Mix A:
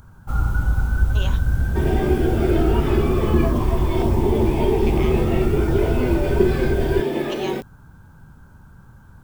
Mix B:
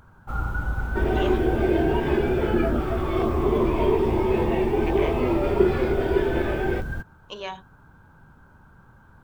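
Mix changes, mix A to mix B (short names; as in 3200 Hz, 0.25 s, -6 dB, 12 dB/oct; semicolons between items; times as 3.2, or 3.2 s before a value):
second sound: entry -0.80 s; master: add tone controls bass -8 dB, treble -11 dB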